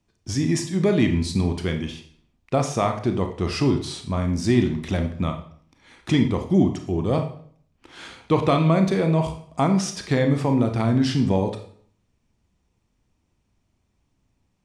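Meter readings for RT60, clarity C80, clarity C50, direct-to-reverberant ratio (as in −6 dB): 0.55 s, 13.0 dB, 8.5 dB, 5.0 dB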